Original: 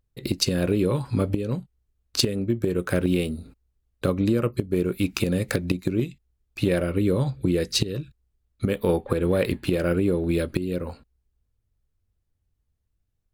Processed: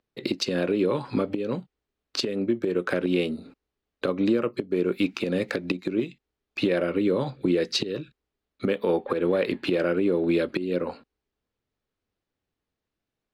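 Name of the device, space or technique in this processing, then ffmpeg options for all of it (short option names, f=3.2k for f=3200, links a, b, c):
DJ mixer with the lows and highs turned down: -filter_complex "[0:a]acrossover=split=200 5300:gain=0.0631 1 0.1[a][b][c];[a][b][c]amix=inputs=3:normalize=0,alimiter=limit=-18.5dB:level=0:latency=1:release=244,volume=5dB"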